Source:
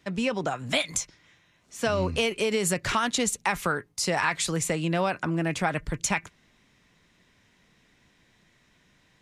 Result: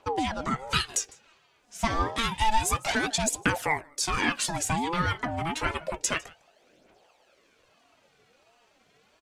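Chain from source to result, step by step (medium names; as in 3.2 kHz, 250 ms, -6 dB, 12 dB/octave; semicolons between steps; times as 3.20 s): 2.61–3.03 s: overload inside the chain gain 17 dB; delay 154 ms -23.5 dB; phaser 0.29 Hz, delay 4.2 ms, feedback 64%; on a send at -21 dB: reverberation RT60 0.30 s, pre-delay 3 ms; on the sum: ring modulator with a swept carrier 570 Hz, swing 25%, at 1.4 Hz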